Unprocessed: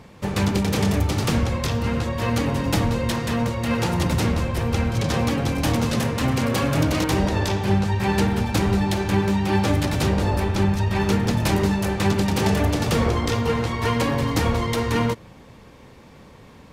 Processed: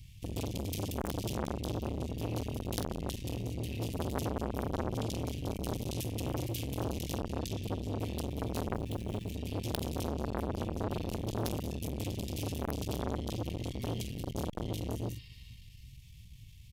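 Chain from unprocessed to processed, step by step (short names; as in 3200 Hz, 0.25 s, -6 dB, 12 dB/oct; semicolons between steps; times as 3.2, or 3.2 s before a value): 8.67–9.3 median filter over 9 samples; graphic EQ 125/4000/8000 Hz -5/-9/-5 dB; in parallel at -0.5 dB: compressor 10:1, threshold -34 dBFS, peak gain reduction 17.5 dB; on the sum: elliptic band-stop 120–3100 Hz, stop band 40 dB; wrapped overs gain 16 dB; 13.92–14.68 bell 830 Hz -12 dB 1.2 oct; 14.93–15.9 spectral repair 210–5500 Hz both; on a send: early reflections 17 ms -13 dB, 46 ms -7.5 dB; on the sum: core saturation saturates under 1000 Hz; gain -2 dB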